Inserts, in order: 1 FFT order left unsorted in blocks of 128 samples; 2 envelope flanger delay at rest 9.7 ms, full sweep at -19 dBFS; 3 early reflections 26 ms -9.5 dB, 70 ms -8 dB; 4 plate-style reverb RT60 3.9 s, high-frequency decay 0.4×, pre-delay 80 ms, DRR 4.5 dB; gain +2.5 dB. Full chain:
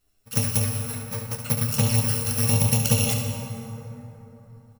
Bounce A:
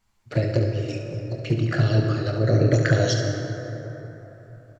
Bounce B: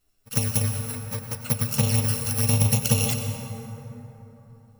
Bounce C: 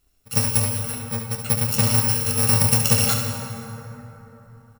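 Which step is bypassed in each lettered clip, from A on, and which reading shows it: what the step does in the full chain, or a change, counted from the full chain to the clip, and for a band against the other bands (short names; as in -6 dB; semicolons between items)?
1, 8 kHz band -16.0 dB; 3, echo-to-direct -1.5 dB to -4.5 dB; 2, 125 Hz band -4.0 dB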